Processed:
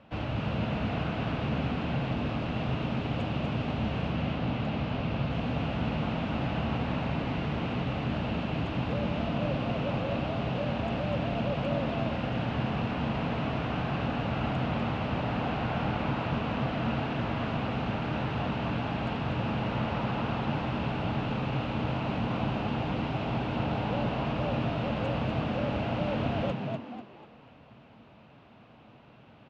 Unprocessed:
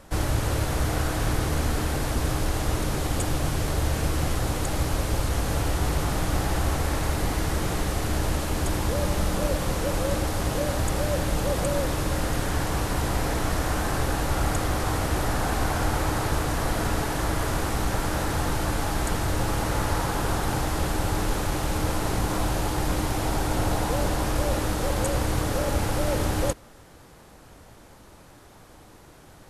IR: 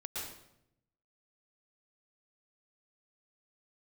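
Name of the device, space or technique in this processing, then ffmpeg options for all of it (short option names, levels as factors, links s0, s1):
frequency-shifting delay pedal into a guitar cabinet: -filter_complex "[0:a]asettb=1/sr,asplit=3[s0][s1][s2];[s0]atrim=end=4.124[s3];[s1]atrim=start=4.12:end=5.31,asetpts=PTS-STARTPTS,afade=t=in:d=0.004:c=qsin,afade=t=out:st=1.186:d=0.004:c=qsin,lowpass=6100[s4];[s2]atrim=start=5.306[s5];[s3][s4]acrossfade=d=0.004:c1=hsin:c2=qsin[s6];[s6][s5]acrossfade=d=0.004:c1=qsin:c2=hsin,asplit=6[s7][s8][s9][s10][s11][s12];[s8]adelay=245,afreqshift=100,volume=0.501[s13];[s9]adelay=490,afreqshift=200,volume=0.195[s14];[s10]adelay=735,afreqshift=300,volume=0.0759[s15];[s11]adelay=980,afreqshift=400,volume=0.0299[s16];[s12]adelay=1225,afreqshift=500,volume=0.0116[s17];[s7][s13][s14][s15][s16][s17]amix=inputs=6:normalize=0,highpass=85,equalizer=f=130:t=q:w=4:g=6,equalizer=f=230:t=q:w=4:g=8,equalizer=f=370:t=q:w=4:g=-4,equalizer=f=670:t=q:w=4:g=4,equalizer=f=1800:t=q:w=4:g=-4,equalizer=f=2700:t=q:w=4:g=9,lowpass=f=3500:w=0.5412,lowpass=f=3500:w=1.3066,volume=0.447"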